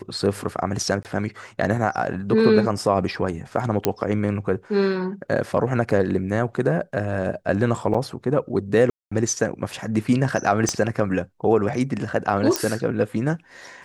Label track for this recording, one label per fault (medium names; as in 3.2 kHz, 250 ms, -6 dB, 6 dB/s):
1.030000	1.050000	dropout 18 ms
3.850000	3.850000	pop -4 dBFS
7.940000	7.950000	dropout 5.4 ms
8.900000	9.120000	dropout 215 ms
10.690000	10.690000	pop -9 dBFS
12.560000	12.560000	pop -5 dBFS